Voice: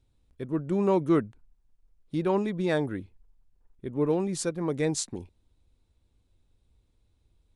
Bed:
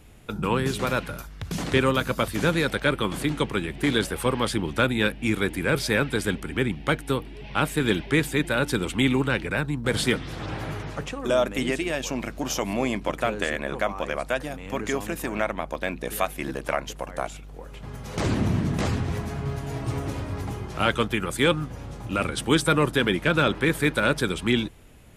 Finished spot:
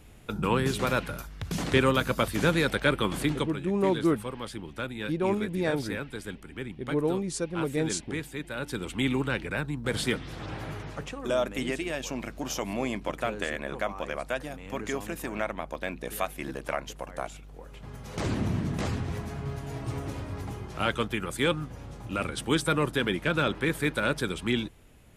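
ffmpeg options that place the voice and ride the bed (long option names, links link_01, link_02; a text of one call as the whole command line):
ffmpeg -i stem1.wav -i stem2.wav -filter_complex "[0:a]adelay=2950,volume=-1.5dB[link_01];[1:a]volume=6dB,afade=type=out:start_time=3.3:duration=0.26:silence=0.281838,afade=type=in:start_time=8.48:duration=0.65:silence=0.421697[link_02];[link_01][link_02]amix=inputs=2:normalize=0" out.wav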